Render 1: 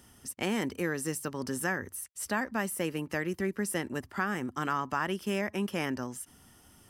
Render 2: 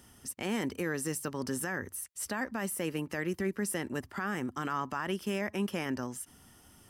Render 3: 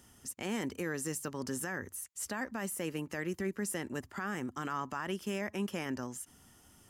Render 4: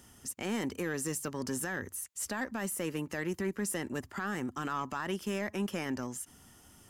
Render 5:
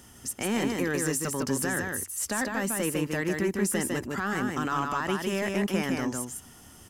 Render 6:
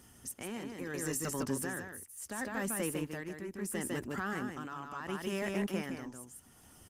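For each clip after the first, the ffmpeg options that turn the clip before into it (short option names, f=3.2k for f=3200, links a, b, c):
-af "alimiter=limit=-23dB:level=0:latency=1:release=12"
-af "equalizer=f=6.9k:w=6.9:g=9,volume=-3dB"
-af "asoftclip=type=tanh:threshold=-27dB,volume=3dB"
-af "aecho=1:1:154:0.668,volume=5.5dB"
-af "aresample=32000,aresample=44100,tremolo=f=0.73:d=0.65,volume=-5.5dB" -ar 48000 -c:a libopus -b:a 24k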